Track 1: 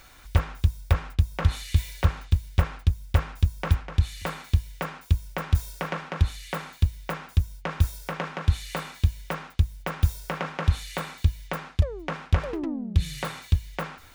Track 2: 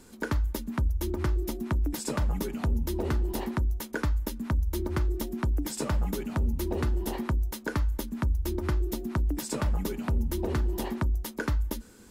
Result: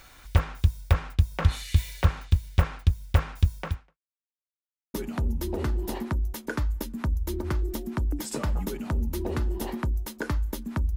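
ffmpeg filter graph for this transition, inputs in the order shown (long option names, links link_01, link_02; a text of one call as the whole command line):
ffmpeg -i cue0.wav -i cue1.wav -filter_complex "[0:a]apad=whole_dur=10.96,atrim=end=10.96,asplit=2[link_01][link_02];[link_01]atrim=end=3.98,asetpts=PTS-STARTPTS,afade=type=out:start_time=3.55:duration=0.43:curve=qua[link_03];[link_02]atrim=start=3.98:end=4.94,asetpts=PTS-STARTPTS,volume=0[link_04];[1:a]atrim=start=2.4:end=8.42,asetpts=PTS-STARTPTS,afade=type=in:duration=0.004:curve=hsin[link_05];[link_03][link_04][link_05]concat=n=3:v=0:a=1" out.wav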